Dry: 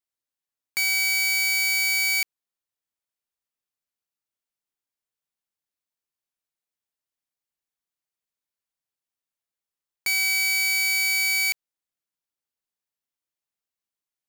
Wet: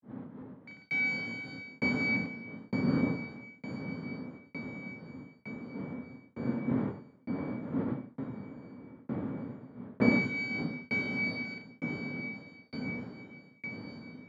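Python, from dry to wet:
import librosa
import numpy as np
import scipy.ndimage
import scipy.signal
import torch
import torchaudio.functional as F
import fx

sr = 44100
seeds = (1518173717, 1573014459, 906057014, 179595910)

y = fx.dmg_wind(x, sr, seeds[0], corner_hz=330.0, level_db=-30.0)
y = fx.granulator(y, sr, seeds[1], grain_ms=260.0, per_s=27.0, spray_ms=100.0, spread_st=0)
y = fx.echo_diffused(y, sr, ms=1278, feedback_pct=57, wet_db=-8.5)
y = fx.tremolo_shape(y, sr, shape='saw_down', hz=1.1, depth_pct=100)
y = fx.cabinet(y, sr, low_hz=120.0, low_slope=24, high_hz=3100.0, hz=(250.0, 360.0, 700.0, 2700.0), db=(8, -7, -6, -10))
y = F.gain(torch.from_numpy(y), 4.0).numpy()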